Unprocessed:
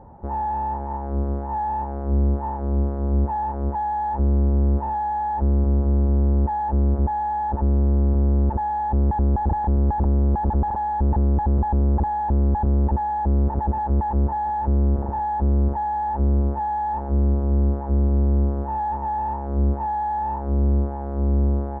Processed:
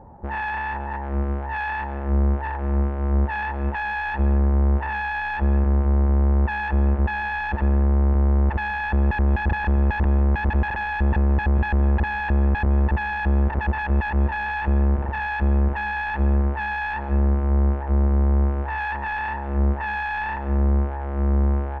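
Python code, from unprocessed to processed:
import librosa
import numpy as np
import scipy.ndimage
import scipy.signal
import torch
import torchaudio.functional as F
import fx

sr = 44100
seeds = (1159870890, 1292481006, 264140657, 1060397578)

y = fx.self_delay(x, sr, depth_ms=0.56)
y = fx.rev_freeverb(y, sr, rt60_s=0.79, hf_ratio=0.6, predelay_ms=120, drr_db=16.5)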